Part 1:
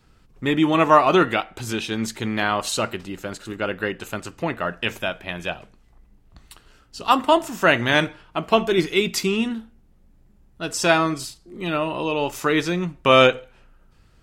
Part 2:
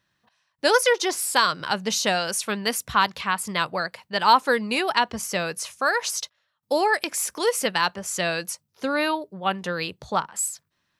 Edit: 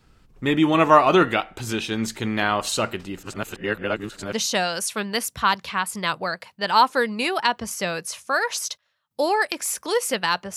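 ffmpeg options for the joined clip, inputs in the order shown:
-filter_complex "[0:a]apad=whole_dur=10.56,atrim=end=10.56,asplit=2[a][b];[a]atrim=end=3.232[c];[b]atrim=start=3.228:end=4.332,asetpts=PTS-STARTPTS,areverse[d];[1:a]atrim=start=1.848:end=8.08[e];[c][d]acrossfade=d=0.004:c1=hsin:c2=hsin[f];[f][e]acrossfade=d=0.004:c1=hsin:c2=hsin"

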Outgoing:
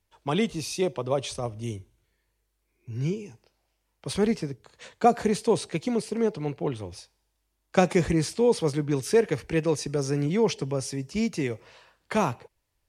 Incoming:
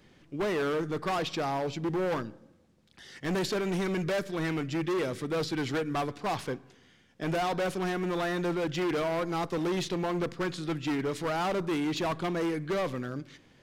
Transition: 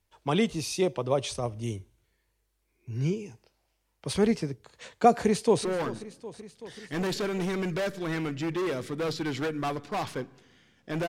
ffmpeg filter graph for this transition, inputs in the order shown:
-filter_complex "[0:a]apad=whole_dur=11.08,atrim=end=11.08,atrim=end=5.652[a];[1:a]atrim=start=1.968:end=7.4[b];[a][b]acrossfade=d=0.004:c1=hsin:c2=hsin,asplit=2[c][d];[d]afade=t=in:st=5.19:d=0.01,afade=t=out:st=5.65:d=0.01,aecho=0:1:380|760|1140|1520|1900|2280|2660|3040|3420|3800:0.158489|0.118867|0.0891502|0.0668627|0.050147|0.0376103|0.0282077|0.0211558|0.0158668|0.0119001[e];[c][e]amix=inputs=2:normalize=0"

